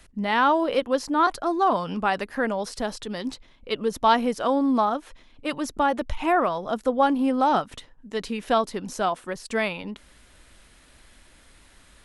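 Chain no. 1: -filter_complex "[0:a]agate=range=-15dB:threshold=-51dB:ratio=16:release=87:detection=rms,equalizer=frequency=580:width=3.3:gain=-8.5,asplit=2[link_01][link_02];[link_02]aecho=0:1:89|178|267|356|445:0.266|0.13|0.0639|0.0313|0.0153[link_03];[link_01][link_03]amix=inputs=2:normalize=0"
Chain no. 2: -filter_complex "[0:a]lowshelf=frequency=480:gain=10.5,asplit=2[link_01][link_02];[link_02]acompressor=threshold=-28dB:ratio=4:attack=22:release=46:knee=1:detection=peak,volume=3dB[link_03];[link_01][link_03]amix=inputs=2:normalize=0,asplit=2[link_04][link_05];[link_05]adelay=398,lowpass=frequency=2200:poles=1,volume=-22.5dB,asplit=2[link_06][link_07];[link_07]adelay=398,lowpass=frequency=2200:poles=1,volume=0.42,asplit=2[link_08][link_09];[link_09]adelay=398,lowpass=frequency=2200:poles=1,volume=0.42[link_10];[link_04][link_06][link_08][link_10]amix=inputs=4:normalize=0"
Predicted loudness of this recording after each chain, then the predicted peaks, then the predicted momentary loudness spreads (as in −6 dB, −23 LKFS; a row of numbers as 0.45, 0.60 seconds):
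−25.5, −16.0 LKFS; −8.5, −1.5 dBFS; 12, 10 LU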